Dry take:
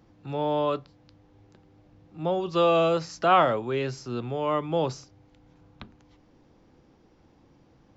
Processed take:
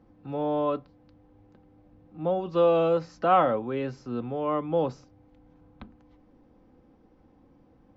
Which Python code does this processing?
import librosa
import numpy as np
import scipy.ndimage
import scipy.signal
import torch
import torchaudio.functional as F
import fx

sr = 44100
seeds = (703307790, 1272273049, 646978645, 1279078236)

y = fx.lowpass(x, sr, hz=1100.0, slope=6)
y = y + 0.38 * np.pad(y, (int(3.9 * sr / 1000.0), 0))[:len(y)]